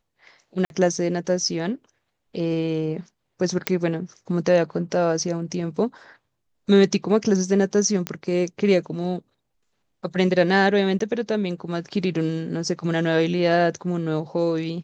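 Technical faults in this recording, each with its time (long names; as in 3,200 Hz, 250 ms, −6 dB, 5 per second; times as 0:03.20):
0:00.65–0:00.70: drop-out 51 ms
0:03.67: click −5 dBFS
0:08.07: click −10 dBFS
0:10.99–0:11.00: drop-out 13 ms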